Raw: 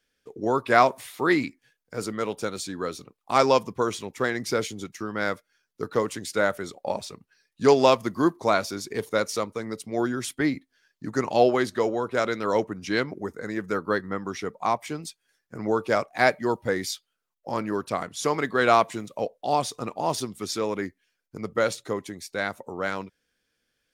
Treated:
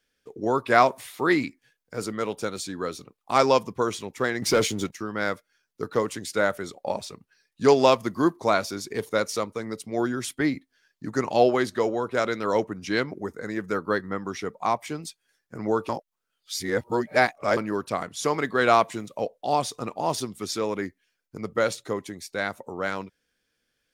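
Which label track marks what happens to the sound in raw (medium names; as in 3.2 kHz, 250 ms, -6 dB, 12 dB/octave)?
4.420000	4.910000	waveshaping leveller passes 2
15.890000	17.570000	reverse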